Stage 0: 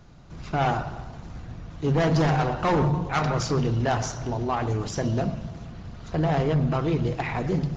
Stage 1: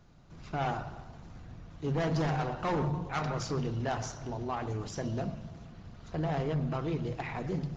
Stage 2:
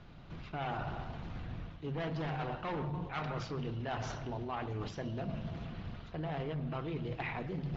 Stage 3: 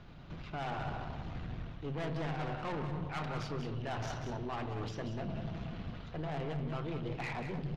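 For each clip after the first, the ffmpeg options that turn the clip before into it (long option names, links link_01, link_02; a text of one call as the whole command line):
ffmpeg -i in.wav -af "bandreject=frequency=60:width_type=h:width=6,bandreject=frequency=120:width_type=h:width=6,volume=-8.5dB" out.wav
ffmpeg -i in.wav -af "areverse,acompressor=threshold=-41dB:ratio=10,areverse,lowpass=frequency=3200:width_type=q:width=1.6,volume=5.5dB" out.wav
ffmpeg -i in.wav -af "aeval=exprs='(tanh(63.1*val(0)+0.4)-tanh(0.4))/63.1':channel_layout=same,aecho=1:1:188:0.376,volume=2.5dB" out.wav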